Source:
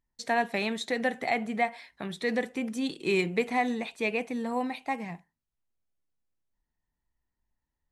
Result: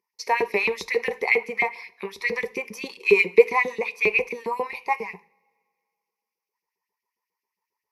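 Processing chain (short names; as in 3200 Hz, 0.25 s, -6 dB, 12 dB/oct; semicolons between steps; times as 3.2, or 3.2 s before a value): LFO high-pass saw up 7.4 Hz 300–3400 Hz; ripple EQ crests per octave 0.83, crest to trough 16 dB; two-slope reverb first 0.47 s, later 2.2 s, from -22 dB, DRR 17 dB; gain +1 dB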